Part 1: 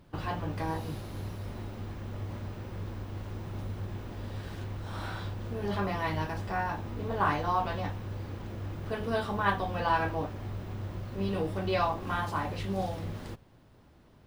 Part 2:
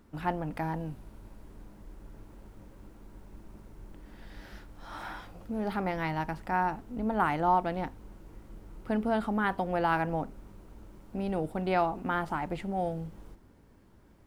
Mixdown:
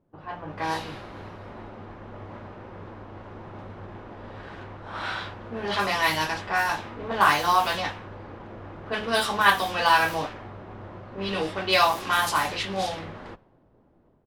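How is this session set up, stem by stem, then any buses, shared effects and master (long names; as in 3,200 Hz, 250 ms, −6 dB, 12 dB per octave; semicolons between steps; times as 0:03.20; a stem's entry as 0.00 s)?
−0.5 dB, 0.00 s, no send, spectral tilt +4.5 dB per octave
−15.5 dB, 28 ms, no send, step-sequenced phaser 4.8 Hz 270–2,300 Hz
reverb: not used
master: automatic gain control gain up to 9 dB; low-pass that shuts in the quiet parts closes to 480 Hz, open at −19.5 dBFS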